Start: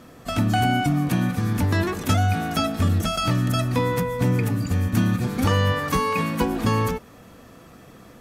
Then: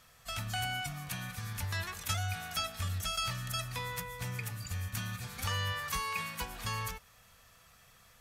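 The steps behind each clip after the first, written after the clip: passive tone stack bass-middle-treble 10-0-10; gain -4 dB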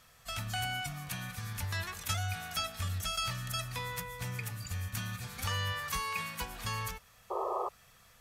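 painted sound noise, 7.3–7.69, 350–1300 Hz -34 dBFS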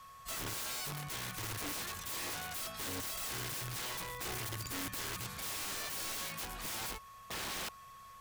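wrapped overs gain 35.5 dB; whine 1100 Hz -52 dBFS

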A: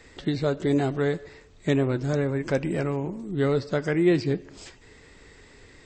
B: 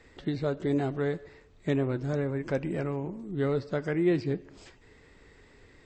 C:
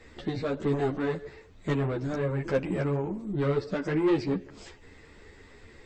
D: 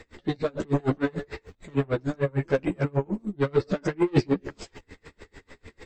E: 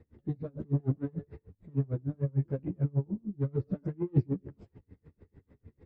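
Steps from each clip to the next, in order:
high shelf 4200 Hz -9 dB; gain -4.5 dB
soft clip -25.5 dBFS, distortion -13 dB; ensemble effect; gain +7.5 dB
transient shaper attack -2 dB, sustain +8 dB; dB-linear tremolo 6.7 Hz, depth 33 dB; gain +8 dB
band-pass 120 Hz, Q 1.3

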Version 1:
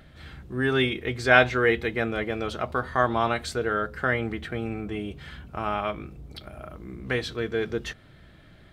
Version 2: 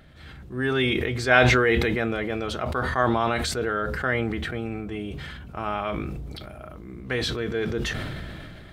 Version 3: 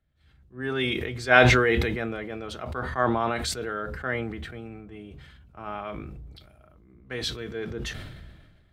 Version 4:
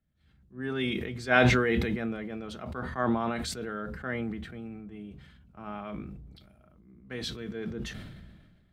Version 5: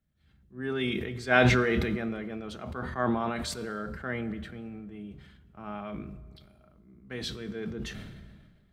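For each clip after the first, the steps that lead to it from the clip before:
sustainer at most 21 dB/s; gain -1 dB
three-band expander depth 70%; gain -5 dB
small resonant body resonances 200 Hz, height 10 dB, ringing for 35 ms; gain -6 dB
reverb RT60 1.6 s, pre-delay 3 ms, DRR 14 dB

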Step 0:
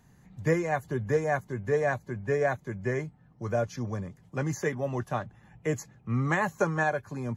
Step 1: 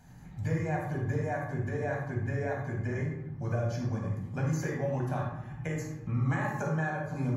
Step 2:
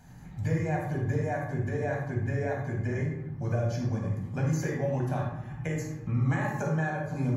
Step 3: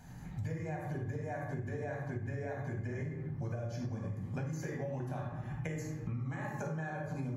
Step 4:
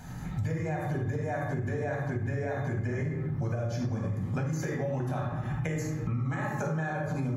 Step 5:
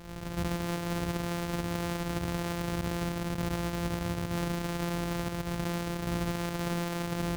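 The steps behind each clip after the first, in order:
compressor 5:1, threshold -37 dBFS, peak gain reduction 15.5 dB; reverb RT60 0.95 s, pre-delay 12 ms, DRR -2 dB
dynamic EQ 1200 Hz, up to -4 dB, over -52 dBFS, Q 1.7; gain +2.5 dB
compressor 10:1, threshold -35 dBFS, peak gain reduction 13.5 dB
in parallel at +1 dB: limiter -35 dBFS, peak gain reduction 8 dB; on the sum: small resonant body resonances 1300/3600 Hz, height 12 dB, ringing for 65 ms; gain +2.5 dB
sample sorter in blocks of 256 samples; careless resampling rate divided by 4×, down none, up hold; gain -1.5 dB

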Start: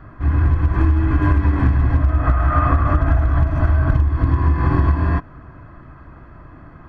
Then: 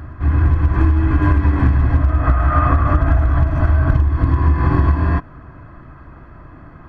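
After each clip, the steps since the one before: reverse echo 0.416 s -20.5 dB; gain +1.5 dB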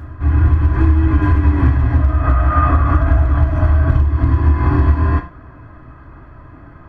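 reverb, pre-delay 3 ms, DRR 3.5 dB; gain -1.5 dB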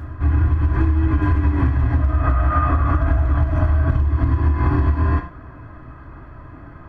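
compressor, threshold -13 dBFS, peak gain reduction 6.5 dB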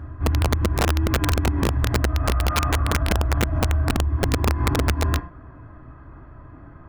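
high shelf 2400 Hz -10 dB; wrapped overs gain 9.5 dB; gain -4 dB

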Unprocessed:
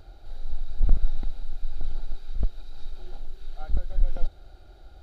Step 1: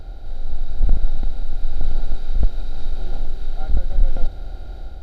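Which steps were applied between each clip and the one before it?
per-bin compression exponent 0.6; notch 1200 Hz, Q 8; AGC gain up to 6 dB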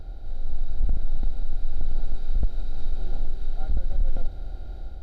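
low shelf 470 Hz +4.5 dB; limiter -4.5 dBFS, peak gain reduction 7 dB; gain -7.5 dB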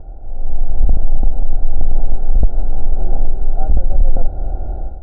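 AGC gain up to 11.5 dB; synth low-pass 780 Hz, resonance Q 1.7; in parallel at 0 dB: compressor, threshold -13 dBFS, peak gain reduction 8.5 dB; on the sum: gain -2 dB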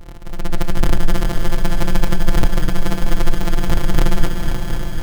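sample sorter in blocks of 256 samples; on a send at -8.5 dB: reverb, pre-delay 3 ms; on the sum: lo-fi delay 0.249 s, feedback 80%, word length 6-bit, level -8 dB; gain -5 dB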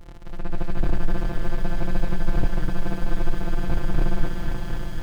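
slew limiter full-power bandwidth 130 Hz; gain -6.5 dB

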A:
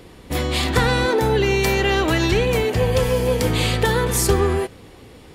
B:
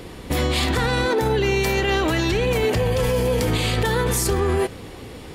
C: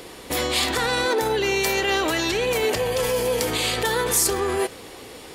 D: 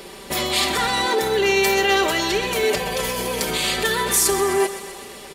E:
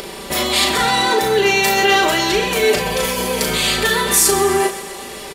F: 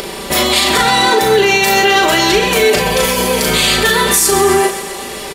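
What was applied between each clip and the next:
in parallel at -2 dB: negative-ratio compressor -21 dBFS; on the sum: limiter -12.5 dBFS, peak gain reduction 9 dB
tone controls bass -13 dB, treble +5 dB
comb 5.1 ms, depth 74%; on a send: thinning echo 0.128 s, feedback 70%, high-pass 420 Hz, level -13 dB
upward compressor, threshold -30 dBFS; doubler 37 ms -5 dB; gain +3.5 dB
maximiser +7 dB; gain -1 dB

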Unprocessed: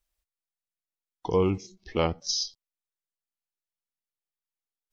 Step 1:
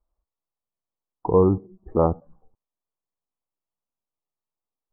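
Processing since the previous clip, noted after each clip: steep low-pass 1200 Hz 48 dB/oct; gain +6.5 dB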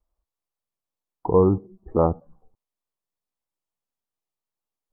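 vibrato 0.72 Hz 18 cents

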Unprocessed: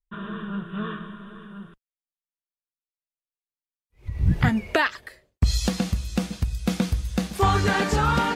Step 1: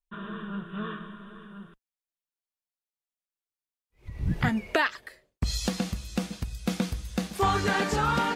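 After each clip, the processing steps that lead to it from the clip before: bell 76 Hz -7.5 dB 1.5 oct; gain -3 dB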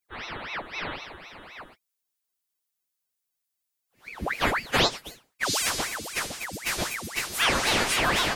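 frequency quantiser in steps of 2 st; ring modulator with a swept carrier 1300 Hz, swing 90%, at 3.9 Hz; gain +3.5 dB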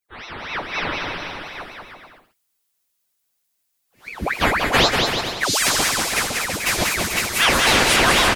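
AGC gain up to 8 dB; on a send: bouncing-ball echo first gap 0.19 s, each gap 0.75×, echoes 5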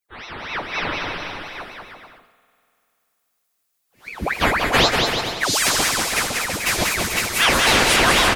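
spring tank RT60 2.7 s, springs 48 ms, chirp 35 ms, DRR 16.5 dB

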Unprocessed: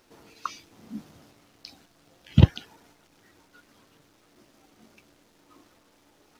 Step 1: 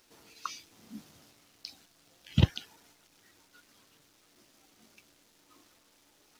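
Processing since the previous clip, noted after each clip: high shelf 2100 Hz +10.5 dB; gain -8 dB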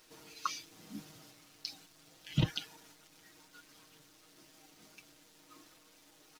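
comb 6.4 ms; limiter -19.5 dBFS, peak gain reduction 12 dB; gain +1 dB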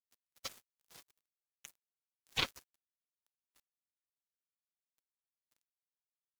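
spectral gate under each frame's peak -20 dB weak; crossover distortion -55 dBFS; ring modulator with a swept carrier 410 Hz, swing 35%, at 1.6 Hz; gain +13 dB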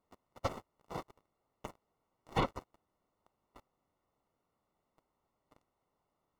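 compressor 8:1, threshold -41 dBFS, peak gain reduction 14 dB; sine folder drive 11 dB, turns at -24.5 dBFS; polynomial smoothing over 65 samples; gain +11 dB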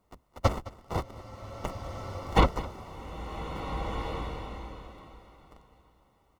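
octaver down 2 oct, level +4 dB; echo 0.213 s -18.5 dB; bloom reverb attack 1.71 s, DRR 5.5 dB; gain +9 dB

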